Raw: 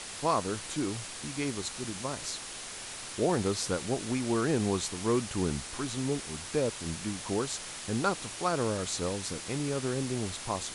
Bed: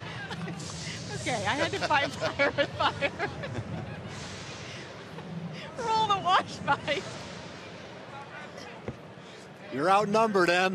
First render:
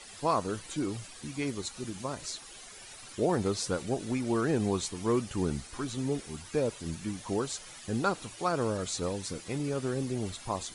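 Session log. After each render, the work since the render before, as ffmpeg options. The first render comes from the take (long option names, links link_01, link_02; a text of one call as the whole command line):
ffmpeg -i in.wav -af "afftdn=noise_reduction=12:noise_floor=-42" out.wav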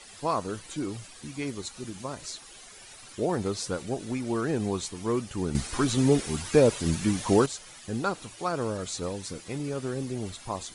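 ffmpeg -i in.wav -filter_complex "[0:a]asplit=3[link_01][link_02][link_03];[link_01]atrim=end=5.552[link_04];[link_02]atrim=start=5.548:end=7.462,asetpts=PTS-STARTPTS,volume=10dB[link_05];[link_03]atrim=start=7.458[link_06];[link_04][link_05]acrossfade=duration=0.004:curve1=hsin:curve2=hsin[link_07];[link_07][link_06]acrossfade=duration=0.004:curve1=hsin:curve2=hsin" out.wav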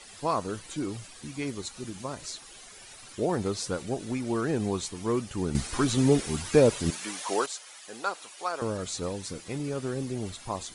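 ffmpeg -i in.wav -filter_complex "[0:a]asettb=1/sr,asplit=3[link_01][link_02][link_03];[link_01]atrim=end=6.904[link_04];[link_02]atrim=start=6.9:end=8.62,asetpts=PTS-STARTPTS,afade=type=in:duration=0.004:curve=qsin,afade=type=out:start_time=1.716:duration=0.004:curve=qsin,highpass=600[link_05];[link_03]atrim=start=8.616[link_06];[link_04][link_05]acrossfade=duration=0.004:curve1=hsin:curve2=qsin[link_07];[link_07][link_06]acrossfade=duration=0.004:curve1=qsin:curve2=hsin" out.wav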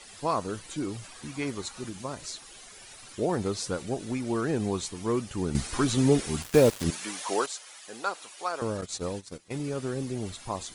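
ffmpeg -i in.wav -filter_complex "[0:a]asettb=1/sr,asplit=3[link_01][link_02][link_03];[link_01]atrim=end=1.034[link_04];[link_02]atrim=start=1.03:end=1.89,asetpts=PTS-STARTPTS,afade=type=in:duration=0.004:curve=qsin,afade=type=out:start_time=0.856:duration=0.004:curve=qsin,equalizer=frequency=1100:width_type=o:width=1.8:gain=5.5[link_05];[link_03]atrim=start=1.886[link_06];[link_04][link_05]acrossfade=duration=0.004:curve1=hsin:curve2=qsin[link_07];[link_07][link_06]acrossfade=duration=0.004:curve1=qsin:curve2=hsin,asettb=1/sr,asplit=3[link_08][link_09][link_10];[link_08]atrim=end=6.424[link_11];[link_09]atrim=start=6.42:end=6.84,asetpts=PTS-STARTPTS,afade=type=in:duration=0.004:curve=qsin,afade=type=out:start_time=0.416:duration=0.004:curve=qsin,acrusher=bits=4:mix=0:aa=0.5[link_12];[link_10]atrim=start=6.836[link_13];[link_11][link_12]acrossfade=duration=0.004:curve1=hsin:curve2=qsin[link_14];[link_14][link_13]acrossfade=duration=0.004:curve1=qsin:curve2=hsin,asettb=1/sr,asplit=3[link_15][link_16][link_17];[link_15]atrim=end=8.814[link_18];[link_16]atrim=start=8.81:end=9.7,asetpts=PTS-STARTPTS,afade=type=in:duration=0.004:curve=qsin,afade=type=out:start_time=0.886:duration=0.004:curve=qsin,agate=range=-15dB:threshold=-37dB:ratio=16:release=100:detection=peak[link_19];[link_17]atrim=start=9.696[link_20];[link_18][link_19]acrossfade=duration=0.004:curve1=hsin:curve2=qsin[link_21];[link_21][link_20]acrossfade=duration=0.004:curve1=qsin:curve2=hsin" out.wav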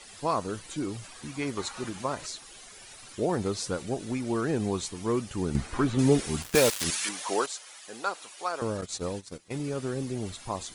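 ffmpeg -i in.wav -filter_complex "[0:a]asettb=1/sr,asplit=3[link_01][link_02][link_03];[link_01]atrim=end=1.574[link_04];[link_02]atrim=start=1.57:end=2.27,asetpts=PTS-STARTPTS,afade=type=in:duration=0.004:curve=qsin,afade=type=out:start_time=0.696:duration=0.004:curve=qsin,equalizer=frequency=1100:width=0.42:gain=7[link_05];[link_03]atrim=start=2.266[link_06];[link_04][link_05]acrossfade=duration=0.004:curve1=hsin:curve2=qsin[link_07];[link_07][link_06]acrossfade=duration=0.004:curve1=qsin:curve2=hsin,asettb=1/sr,asplit=3[link_08][link_09][link_10];[link_08]atrim=end=5.554[link_11];[link_09]atrim=start=5.55:end=5.99,asetpts=PTS-STARTPTS,afade=type=in:duration=0.004:curve=qsin,afade=type=out:start_time=0.436:duration=0.004:curve=qsin,acrossover=split=2600[link_12][link_13];[link_13]acompressor=threshold=-47dB:ratio=4:attack=1:release=60[link_14];[link_12][link_14]amix=inputs=2:normalize=0[link_15];[link_10]atrim=start=5.986[link_16];[link_11][link_15]acrossfade=duration=0.004:curve1=hsin:curve2=qsin[link_17];[link_17][link_16]acrossfade=duration=0.004:curve1=qsin:curve2=hsin,asettb=1/sr,asplit=3[link_18][link_19][link_20];[link_18]atrim=end=6.554[link_21];[link_19]atrim=start=6.55:end=7.09,asetpts=PTS-STARTPTS,afade=type=in:duration=0.004:curve=qsin,afade=type=out:start_time=0.536:duration=0.004:curve=qsin,tiltshelf=frequency=750:gain=-8.5[link_22];[link_20]atrim=start=7.086[link_23];[link_21][link_22]acrossfade=duration=0.004:curve1=hsin:curve2=qsin[link_24];[link_24][link_23]acrossfade=duration=0.004:curve1=qsin:curve2=hsin" out.wav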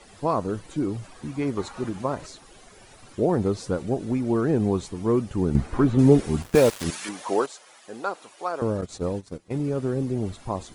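ffmpeg -i in.wav -af "tiltshelf=frequency=1400:gain=7" out.wav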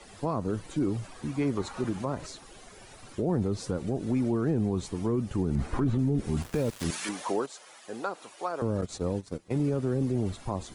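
ffmpeg -i in.wav -filter_complex "[0:a]acrossover=split=270[link_01][link_02];[link_02]acompressor=threshold=-28dB:ratio=6[link_03];[link_01][link_03]amix=inputs=2:normalize=0,alimiter=limit=-19dB:level=0:latency=1:release=11" out.wav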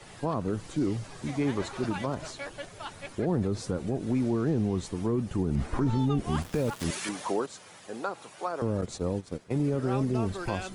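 ffmpeg -i in.wav -i bed.wav -filter_complex "[1:a]volume=-14dB[link_01];[0:a][link_01]amix=inputs=2:normalize=0" out.wav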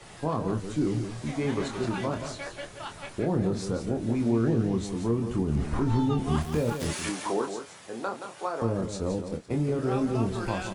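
ffmpeg -i in.wav -filter_complex "[0:a]asplit=2[link_01][link_02];[link_02]adelay=26,volume=-5.5dB[link_03];[link_01][link_03]amix=inputs=2:normalize=0,aecho=1:1:173:0.376" out.wav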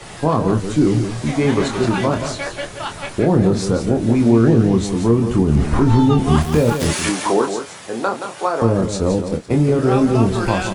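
ffmpeg -i in.wav -af "volume=12dB,alimiter=limit=-2dB:level=0:latency=1" out.wav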